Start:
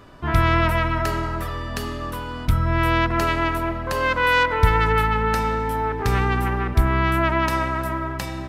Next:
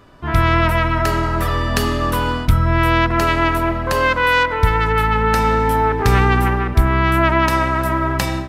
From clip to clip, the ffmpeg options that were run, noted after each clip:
-af "dynaudnorm=f=190:g=3:m=15.5dB,volume=-1dB"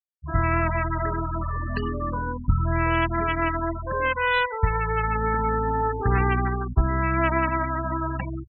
-af "aeval=exprs='0.841*(cos(1*acos(clip(val(0)/0.841,-1,1)))-cos(1*PI/2))+0.106*(cos(3*acos(clip(val(0)/0.841,-1,1)))-cos(3*PI/2))+0.0211*(cos(5*acos(clip(val(0)/0.841,-1,1)))-cos(5*PI/2))+0.00841*(cos(7*acos(clip(val(0)/0.841,-1,1)))-cos(7*PI/2))':c=same,afftfilt=real='re*gte(hypot(re,im),0.2)':imag='im*gte(hypot(re,im),0.2)':win_size=1024:overlap=0.75,volume=-5dB"

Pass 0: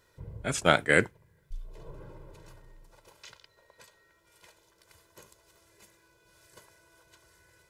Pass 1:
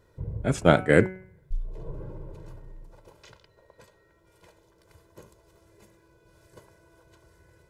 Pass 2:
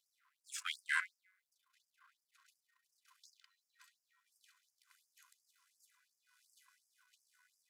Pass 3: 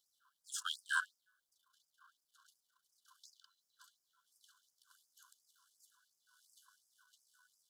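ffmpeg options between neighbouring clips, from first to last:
-af "tiltshelf=f=970:g=7.5,bandreject=f=186.9:t=h:w=4,bandreject=f=373.8:t=h:w=4,bandreject=f=560.7:t=h:w=4,bandreject=f=747.6:t=h:w=4,bandreject=f=934.5:t=h:w=4,bandreject=f=1.1214k:t=h:w=4,bandreject=f=1.3083k:t=h:w=4,bandreject=f=1.4952k:t=h:w=4,bandreject=f=1.6821k:t=h:w=4,bandreject=f=1.869k:t=h:w=4,bandreject=f=2.0559k:t=h:w=4,bandreject=f=2.2428k:t=h:w=4,bandreject=f=2.4297k:t=h:w=4,bandreject=f=2.6166k:t=h:w=4,bandreject=f=2.8035k:t=h:w=4,bandreject=f=2.9904k:t=h:w=4,volume=2dB"
-af "aeval=exprs='if(lt(val(0),0),0.447*val(0),val(0))':c=same,afftfilt=real='re*gte(b*sr/1024,970*pow(4800/970,0.5+0.5*sin(2*PI*2.8*pts/sr)))':imag='im*gte(b*sr/1024,970*pow(4800/970,0.5+0.5*sin(2*PI*2.8*pts/sr)))':win_size=1024:overlap=0.75,volume=-3.5dB"
-af "asuperstop=centerf=2200:order=12:qfactor=1.7,volume=3dB"

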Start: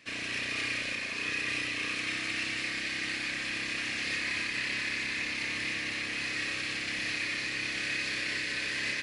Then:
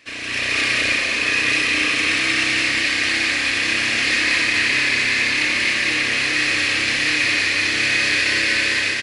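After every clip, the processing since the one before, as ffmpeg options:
-af "equalizer=f=170:t=o:w=0.52:g=-12,dynaudnorm=f=100:g=7:m=7dB,aecho=1:1:201.2|253.6:0.631|0.316,volume=6dB"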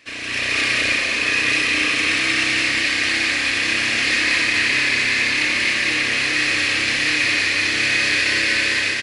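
-af anull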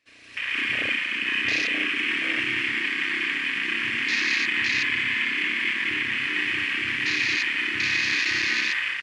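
-af "afwtdn=0.0891,volume=-4.5dB"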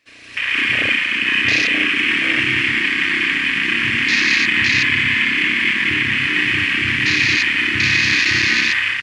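-af "asubboost=boost=3:cutoff=240,volume=8.5dB"

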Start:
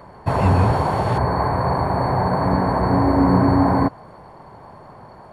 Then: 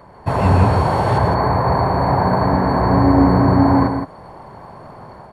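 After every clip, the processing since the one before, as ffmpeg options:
-filter_complex "[0:a]dynaudnorm=f=100:g=5:m=5dB,asplit=2[a][b];[b]aecho=0:1:107.9|166.2:0.355|0.398[c];[a][c]amix=inputs=2:normalize=0,volume=-1.5dB"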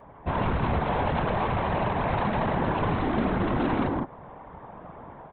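-af "aresample=8000,asoftclip=type=hard:threshold=-17.5dB,aresample=44100,afftfilt=real='hypot(re,im)*cos(2*PI*random(0))':imag='hypot(re,im)*sin(2*PI*random(1))':win_size=512:overlap=0.75"

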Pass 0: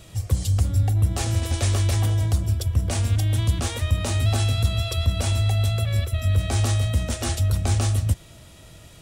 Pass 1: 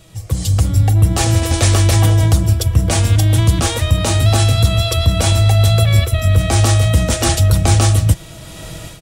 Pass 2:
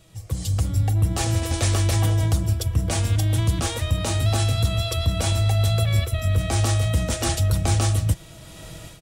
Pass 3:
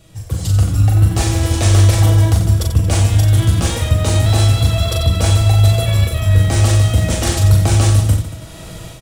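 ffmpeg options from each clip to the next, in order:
-af "aecho=1:1:6.2:0.35,dynaudnorm=f=240:g=3:m=16dB"
-af "asoftclip=type=hard:threshold=-3dB,volume=-8.5dB"
-filter_complex "[0:a]asplit=2[a][b];[b]acrusher=samples=22:mix=1:aa=0.000001:lfo=1:lforange=22:lforate=0.33,volume=-10dB[c];[a][c]amix=inputs=2:normalize=0,aecho=1:1:40|90|152.5|230.6|328.3:0.631|0.398|0.251|0.158|0.1,volume=3.5dB"

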